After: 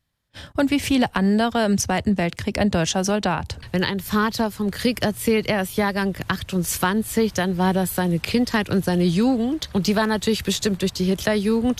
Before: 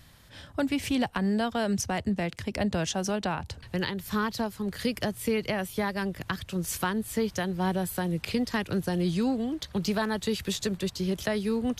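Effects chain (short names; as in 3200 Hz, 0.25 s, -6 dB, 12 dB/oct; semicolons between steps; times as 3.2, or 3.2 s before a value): gate -47 dBFS, range -29 dB; gain +8 dB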